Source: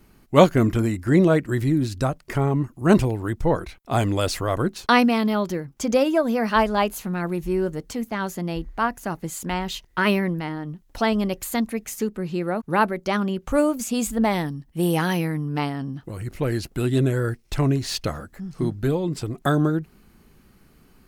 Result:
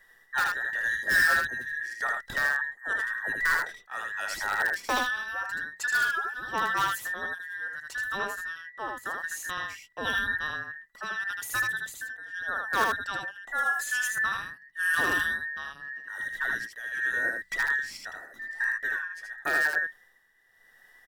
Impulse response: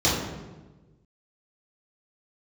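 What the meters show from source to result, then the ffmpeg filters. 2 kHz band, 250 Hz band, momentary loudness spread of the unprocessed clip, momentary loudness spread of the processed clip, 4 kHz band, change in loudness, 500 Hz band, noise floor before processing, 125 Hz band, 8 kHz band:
+6.5 dB, −26.0 dB, 10 LU, 11 LU, −5.5 dB, −5.5 dB, −19.0 dB, −57 dBFS, −28.5 dB, −4.0 dB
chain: -filter_complex "[0:a]afftfilt=real='real(if(between(b,1,1012),(2*floor((b-1)/92)+1)*92-b,b),0)':imag='imag(if(between(b,1,1012),(2*floor((b-1)/92)+1)*92-b,b),0)*if(between(b,1,1012),-1,1)':win_size=2048:overlap=0.75,bandreject=frequency=60:width_type=h:width=6,bandreject=frequency=120:width_type=h:width=6,bandreject=frequency=180:width_type=h:width=6,tremolo=f=0.86:d=0.71,asplit=2[link_01][link_02];[link_02]aeval=exprs='(mod(4.47*val(0)+1,2)-1)/4.47':channel_layout=same,volume=-9dB[link_03];[link_01][link_03]amix=inputs=2:normalize=0,aecho=1:1:78:0.708,volume=-8dB"

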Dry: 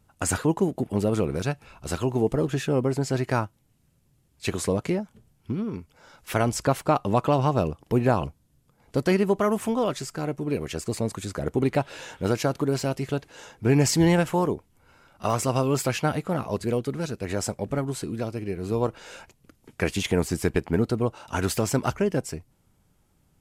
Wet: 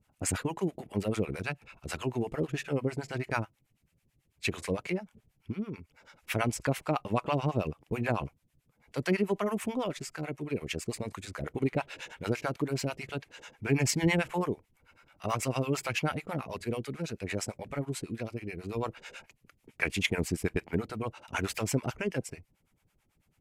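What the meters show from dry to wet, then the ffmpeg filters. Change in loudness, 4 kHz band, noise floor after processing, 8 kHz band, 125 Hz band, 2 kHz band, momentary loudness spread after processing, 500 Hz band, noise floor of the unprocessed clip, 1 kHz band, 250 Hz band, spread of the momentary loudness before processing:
−7.0 dB, −4.0 dB, −75 dBFS, −6.0 dB, −7.5 dB, −1.5 dB, 10 LU, −8.5 dB, −65 dBFS, −7.5 dB, −7.5 dB, 9 LU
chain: -filter_complex "[0:a]acrossover=split=610[link_01][link_02];[link_01]aeval=exprs='val(0)*(1-1/2+1/2*cos(2*PI*9.1*n/s))':channel_layout=same[link_03];[link_02]aeval=exprs='val(0)*(1-1/2-1/2*cos(2*PI*9.1*n/s))':channel_layout=same[link_04];[link_03][link_04]amix=inputs=2:normalize=0,equalizer=frequency=2300:width_type=o:width=0.85:gain=9,volume=-3dB"

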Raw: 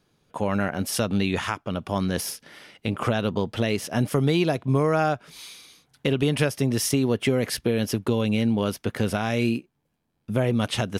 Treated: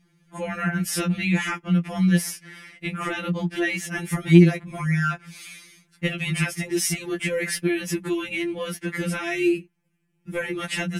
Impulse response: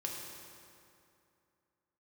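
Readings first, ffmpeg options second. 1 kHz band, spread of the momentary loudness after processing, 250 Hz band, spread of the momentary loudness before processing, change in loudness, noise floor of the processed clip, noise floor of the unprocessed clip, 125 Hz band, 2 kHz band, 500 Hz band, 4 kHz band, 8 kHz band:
−4.0 dB, 12 LU, +1.5 dB, 8 LU, +1.0 dB, −68 dBFS, −73 dBFS, +1.5 dB, +5.0 dB, −3.0 dB, −1.5 dB, +2.0 dB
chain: -af "equalizer=frequency=125:width_type=o:width=1:gain=6,equalizer=frequency=250:width_type=o:width=1:gain=12,equalizer=frequency=500:width_type=o:width=1:gain=-6,equalizer=frequency=1000:width_type=o:width=1:gain=-4,equalizer=frequency=2000:width_type=o:width=1:gain=12,equalizer=frequency=4000:width_type=o:width=1:gain=-5,equalizer=frequency=8000:width_type=o:width=1:gain=6,afftfilt=real='re*2.83*eq(mod(b,8),0)':imag='im*2.83*eq(mod(b,8),0)':win_size=2048:overlap=0.75"

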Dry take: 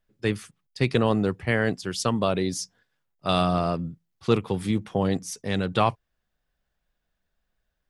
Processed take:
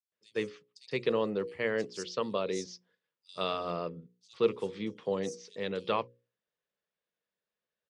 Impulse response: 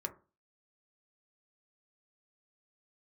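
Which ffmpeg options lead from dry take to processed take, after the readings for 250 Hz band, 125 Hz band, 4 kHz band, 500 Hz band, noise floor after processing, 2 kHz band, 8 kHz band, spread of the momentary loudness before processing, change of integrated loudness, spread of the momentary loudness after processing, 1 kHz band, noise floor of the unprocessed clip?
−12.0 dB, −18.5 dB, −8.0 dB, −5.0 dB, below −85 dBFS, −8.5 dB, −12.0 dB, 11 LU, −8.0 dB, 12 LU, −10.0 dB, −79 dBFS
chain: -filter_complex "[0:a]highpass=240,equalizer=frequency=270:width_type=q:width=4:gain=-6,equalizer=frequency=480:width_type=q:width=4:gain=7,equalizer=frequency=740:width_type=q:width=4:gain=-9,equalizer=frequency=1500:width_type=q:width=4:gain=-5,lowpass=frequency=6800:width=0.5412,lowpass=frequency=6800:width=1.3066,bandreject=frequency=60:width_type=h:width=6,bandreject=frequency=120:width_type=h:width=6,bandreject=frequency=180:width_type=h:width=6,bandreject=frequency=240:width_type=h:width=6,bandreject=frequency=300:width_type=h:width=6,bandreject=frequency=360:width_type=h:width=6,bandreject=frequency=420:width_type=h:width=6,bandreject=frequency=480:width_type=h:width=6,bandreject=frequency=540:width_type=h:width=6,acrossover=split=5200[link_01][link_02];[link_01]adelay=120[link_03];[link_03][link_02]amix=inputs=2:normalize=0,volume=-6.5dB"

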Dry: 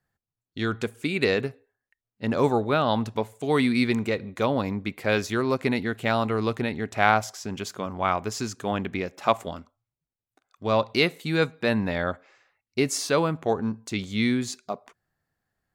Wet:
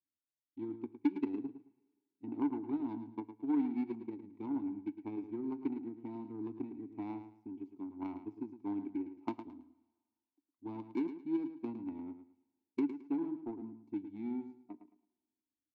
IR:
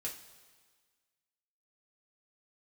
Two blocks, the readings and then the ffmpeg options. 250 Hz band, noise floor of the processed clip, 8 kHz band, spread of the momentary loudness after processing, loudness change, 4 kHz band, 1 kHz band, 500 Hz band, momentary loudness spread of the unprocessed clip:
−8.5 dB, below −85 dBFS, below −40 dB, 12 LU, −14.0 dB, below −35 dB, −22.5 dB, −21.0 dB, 11 LU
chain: -filter_complex "[0:a]bass=frequency=250:gain=8,treble=frequency=4000:gain=14,aecho=1:1:3.1:0.72,acrossover=split=370|840|4200[link_01][link_02][link_03][link_04];[link_01]acompressor=threshold=-26dB:ratio=4[link_05];[link_02]acompressor=threshold=-28dB:ratio=4[link_06];[link_03]acompressor=threshold=-39dB:ratio=4[link_07];[link_04]acompressor=threshold=-32dB:ratio=4[link_08];[link_05][link_06][link_07][link_08]amix=inputs=4:normalize=0,aeval=exprs='0.531*(cos(1*acos(clip(val(0)/0.531,-1,1)))-cos(1*PI/2))+0.168*(cos(3*acos(clip(val(0)/0.531,-1,1)))-cos(3*PI/2))':channel_layout=same,asplit=3[link_09][link_10][link_11];[link_09]bandpass=frequency=300:width_type=q:width=8,volume=0dB[link_12];[link_10]bandpass=frequency=870:width_type=q:width=8,volume=-6dB[link_13];[link_11]bandpass=frequency=2240:width_type=q:width=8,volume=-9dB[link_14];[link_12][link_13][link_14]amix=inputs=3:normalize=0,crystalizer=i=4:c=0,adynamicsmooth=sensitivity=6:basefreq=560,aecho=1:1:109|218|327:0.299|0.0746|0.0187,asplit=2[link_15][link_16];[1:a]atrim=start_sample=2205[link_17];[link_16][link_17]afir=irnorm=-1:irlink=0,volume=-13.5dB[link_18];[link_15][link_18]amix=inputs=2:normalize=0,volume=15.5dB"

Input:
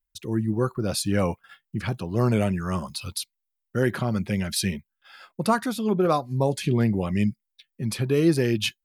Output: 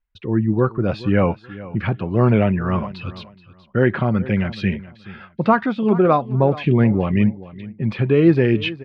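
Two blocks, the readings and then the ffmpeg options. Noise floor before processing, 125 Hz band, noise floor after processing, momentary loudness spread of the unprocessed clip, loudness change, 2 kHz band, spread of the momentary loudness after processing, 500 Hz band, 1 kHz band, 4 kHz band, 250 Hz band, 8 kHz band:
−82 dBFS, +6.5 dB, −50 dBFS, 11 LU, +6.5 dB, +6.0 dB, 15 LU, +6.5 dB, +6.5 dB, −2.5 dB, +6.5 dB, below −25 dB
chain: -af "lowpass=frequency=2800:width=0.5412,lowpass=frequency=2800:width=1.3066,aecho=1:1:426|852:0.133|0.0293,volume=6.5dB"

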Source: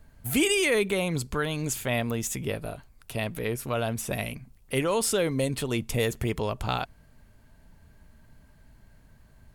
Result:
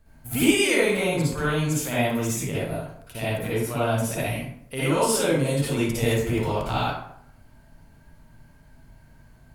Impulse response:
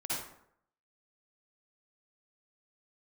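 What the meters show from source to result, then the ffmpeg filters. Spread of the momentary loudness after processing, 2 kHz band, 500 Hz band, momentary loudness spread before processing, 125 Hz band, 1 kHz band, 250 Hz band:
11 LU, +3.5 dB, +3.5 dB, 10 LU, +5.5 dB, +5.5 dB, +5.5 dB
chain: -filter_complex "[1:a]atrim=start_sample=2205[link_01];[0:a][link_01]afir=irnorm=-1:irlink=0"

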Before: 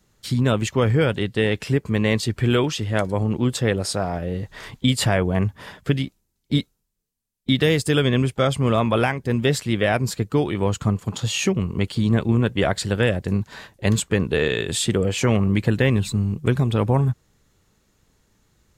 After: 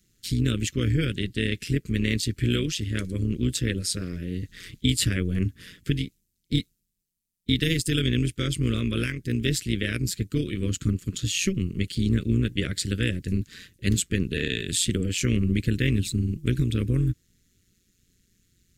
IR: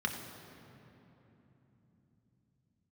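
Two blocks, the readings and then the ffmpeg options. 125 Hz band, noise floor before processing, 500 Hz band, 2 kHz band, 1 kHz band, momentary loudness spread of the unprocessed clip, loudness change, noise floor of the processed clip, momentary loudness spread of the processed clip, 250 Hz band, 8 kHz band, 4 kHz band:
−4.0 dB, −73 dBFS, −11.5 dB, −5.5 dB, −20.5 dB, 6 LU, −4.5 dB, −75 dBFS, 6 LU, −4.0 dB, 0.0 dB, −2.0 dB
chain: -af "tremolo=f=180:d=0.75,asuperstop=centerf=810:order=4:qfactor=0.52,highshelf=frequency=5100:gain=5"

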